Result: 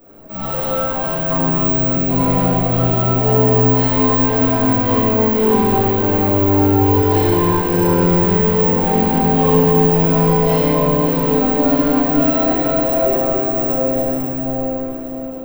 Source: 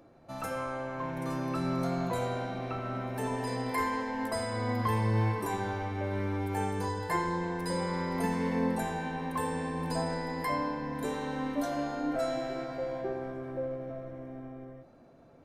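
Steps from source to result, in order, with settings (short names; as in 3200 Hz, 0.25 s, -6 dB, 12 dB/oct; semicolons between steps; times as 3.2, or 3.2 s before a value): median filter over 25 samples; careless resampling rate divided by 2×, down filtered, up zero stuff; 1.36–2.09 fixed phaser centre 2600 Hz, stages 4; echo with dull and thin repeats by turns 0.268 s, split 2100 Hz, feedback 77%, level -9.5 dB; limiter -19.5 dBFS, peak gain reduction 6 dB; flange 0.19 Hz, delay 4.3 ms, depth 6.8 ms, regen -45%; reverb RT60 2.7 s, pre-delay 4 ms, DRR -14 dB; gain +7 dB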